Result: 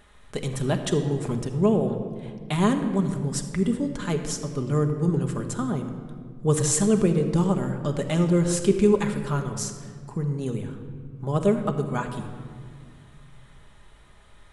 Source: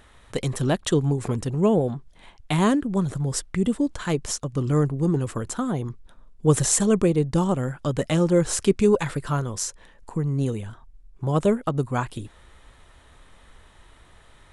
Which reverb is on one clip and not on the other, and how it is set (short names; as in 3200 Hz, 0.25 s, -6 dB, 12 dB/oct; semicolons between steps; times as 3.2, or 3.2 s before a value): shoebox room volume 3600 m³, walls mixed, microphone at 1.3 m; gain -3.5 dB